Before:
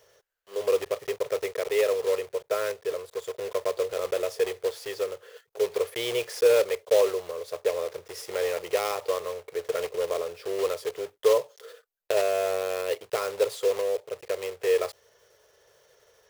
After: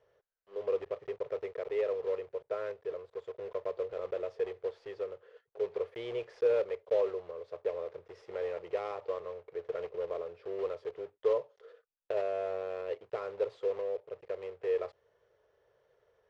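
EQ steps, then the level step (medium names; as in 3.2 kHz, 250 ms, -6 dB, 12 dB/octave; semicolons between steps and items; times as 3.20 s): tape spacing loss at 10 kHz 37 dB; -6.0 dB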